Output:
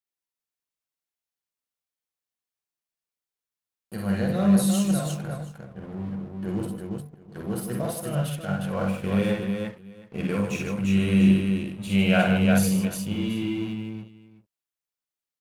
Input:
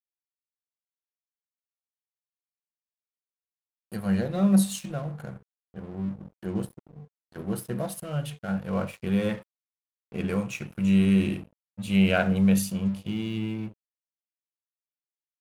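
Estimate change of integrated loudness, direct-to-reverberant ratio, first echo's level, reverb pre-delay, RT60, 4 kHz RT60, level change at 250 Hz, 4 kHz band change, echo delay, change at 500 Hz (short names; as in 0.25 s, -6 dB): +2.0 dB, none, -3.5 dB, none, none, none, +2.0 dB, +3.5 dB, 49 ms, +3.0 dB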